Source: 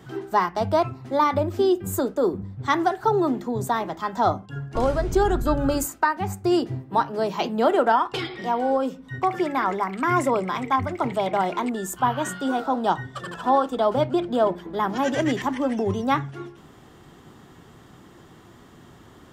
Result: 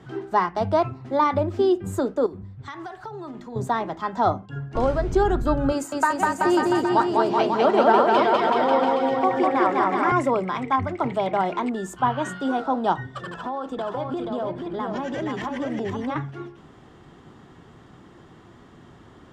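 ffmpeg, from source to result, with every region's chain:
ffmpeg -i in.wav -filter_complex "[0:a]asettb=1/sr,asplit=3[link_01][link_02][link_03];[link_01]atrim=end=2.264[link_04];[link_02]atrim=start=2.26:end=3.56,asetpts=PTS-STARTPTS,afade=type=in:duration=0.004:curve=qsin,afade=type=out:start_time=1.296:duration=0.004:curve=qsin,equalizer=frequency=370:width_type=o:width=3:gain=-9.5,bandreject=frequency=123.7:width_type=h:width=4,bandreject=frequency=247.4:width_type=h:width=4,bandreject=frequency=371.1:width_type=h:width=4,bandreject=frequency=494.8:width_type=h:width=4,bandreject=frequency=618.5:width_type=h:width=4,bandreject=frequency=742.2:width_type=h:width=4,bandreject=frequency=865.9:width_type=h:width=4,bandreject=frequency=989.6:width_type=h:width=4,bandreject=frequency=1113.3:width_type=h:width=4,bandreject=frequency=1237:width_type=h:width=4,acompressor=threshold=-32dB:ratio=6:attack=3.2:release=140:knee=1:detection=peak[link_05];[link_03]atrim=start=3.556[link_06];[link_04][link_05]acrossfade=duration=0.004:curve1=hsin:curve2=qsin[link_07];[link_07][link_06]acrossfade=duration=0.004:curve1=qsin:curve2=hsin,asettb=1/sr,asplit=3[link_08][link_09][link_10];[link_08]atrim=end=5.724[link_11];[link_09]atrim=start=5.72:end=10.12,asetpts=PTS-STARTPTS,afade=type=in:duration=0.004:curve=qsin,afade=type=out:start_time=4.396:duration=0.004:curve=qsin,highpass=220,aecho=1:1:200|380|542|687.8|819|937.1:0.794|0.631|0.501|0.398|0.316|0.251,atrim=end_sample=194040[link_12];[link_10]atrim=start=10.116[link_13];[link_11][link_12]acrossfade=duration=0.004:curve1=hsin:curve2=qsin[link_14];[link_14][link_13]acrossfade=duration=0.004:curve1=qsin:curve2=hsin,asettb=1/sr,asplit=3[link_15][link_16][link_17];[link_15]atrim=end=13.304[link_18];[link_16]atrim=start=13.3:end=16.16,asetpts=PTS-STARTPTS,afade=type=in:duration=0.004:curve=qsin,afade=type=out:start_time=2.856:duration=0.004:curve=qsin,acompressor=threshold=-26dB:ratio=5:attack=3.2:release=140:knee=1:detection=peak,aecho=1:1:479:0.631,atrim=end_sample=126126[link_19];[link_17]atrim=start=16.156[link_20];[link_18][link_19]acrossfade=duration=0.004:curve1=hsin:curve2=qsin[link_21];[link_21][link_20]acrossfade=duration=0.004:curve1=qsin:curve2=hsin,lowpass=10000,aemphasis=mode=reproduction:type=cd" out.wav

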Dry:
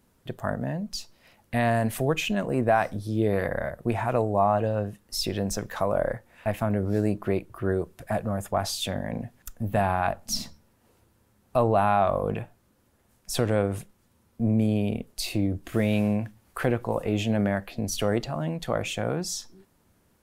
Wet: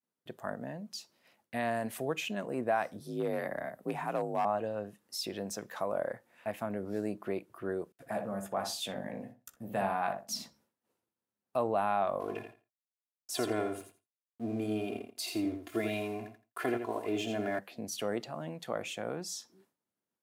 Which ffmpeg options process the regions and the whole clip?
ffmpeg -i in.wav -filter_complex "[0:a]asettb=1/sr,asplit=3[link_01][link_02][link_03];[link_01]atrim=end=3.004[link_04];[link_02]atrim=start=3:end=4.45,asetpts=PTS-STARTPTS,afade=type=in:duration=0.004:curve=qsin,afade=type=out:start_time=1.446:duration=0.004:curve=qsin,highshelf=frequency=11000:gain=6,afreqshift=46,volume=15.5dB,asoftclip=hard,volume=-15.5dB[link_05];[link_03]atrim=start=4.446[link_06];[link_04][link_05]acrossfade=duration=0.004:curve1=hsin:curve2=qsin[link_07];[link_07][link_06]acrossfade=duration=0.004:curve1=qsin:curve2=hsin,asettb=1/sr,asplit=3[link_08][link_09][link_10];[link_08]atrim=end=7.924[link_11];[link_09]atrim=start=7.92:end=10.34,asetpts=PTS-STARTPTS,afade=type=in:duration=0.004:curve=qsin,afade=type=out:start_time=2.416:duration=0.004:curve=qsin,agate=range=-33dB:threshold=-46dB:ratio=3:release=100:detection=peak,asplit=2[link_12][link_13];[link_13]adelay=15,volume=-8dB[link_14];[link_12][link_14]amix=inputs=2:normalize=0,atrim=end_sample=106722,asplit=2[link_15][link_16];[link_16]adelay=61,lowpass=frequency=1200:poles=1,volume=-5dB,asplit=2[link_17][link_18];[link_18]adelay=61,lowpass=frequency=1200:poles=1,volume=0.25,asplit=2[link_19][link_20];[link_20]adelay=61,lowpass=frequency=1200:poles=1,volume=0.25[link_21];[link_15][link_17][link_19][link_21]amix=inputs=4:normalize=0,atrim=end_sample=106722[link_22];[link_10]atrim=start=10.336[link_23];[link_11][link_22]acrossfade=duration=0.004:curve1=hsin:curve2=qsin[link_24];[link_24][link_23]acrossfade=duration=0.004:curve1=qsin:curve2=hsin,asettb=1/sr,asplit=3[link_25][link_26][link_27];[link_25]atrim=end=12.204[link_28];[link_26]atrim=start=12.2:end=17.59,asetpts=PTS-STARTPTS,afade=type=in:duration=0.004:curve=qsin,afade=type=out:start_time=5.386:duration=0.004:curve=qsin,aecho=1:1:2.9:0.92,atrim=end_sample=237699,aeval=exprs='sgn(val(0))*max(abs(val(0))-0.00422,0)':channel_layout=same,aecho=1:1:84|168|252:0.447|0.0759|0.0129,atrim=end_sample=237699[link_29];[link_27]atrim=start=17.586[link_30];[link_28][link_29]acrossfade=duration=0.004:curve1=hsin:curve2=qsin[link_31];[link_31][link_30]acrossfade=duration=0.004:curve1=qsin:curve2=hsin,highpass=210,agate=range=-33dB:threshold=-56dB:ratio=3:detection=peak,volume=-8dB" out.wav

